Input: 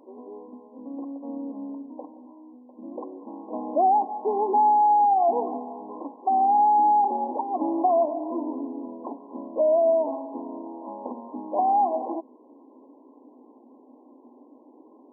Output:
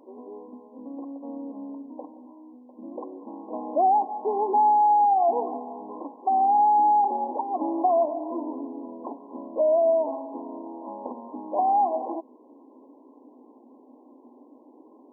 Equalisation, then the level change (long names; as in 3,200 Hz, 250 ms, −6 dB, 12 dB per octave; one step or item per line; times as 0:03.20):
dynamic equaliser 160 Hz, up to −5 dB, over −40 dBFS, Q 0.82
0.0 dB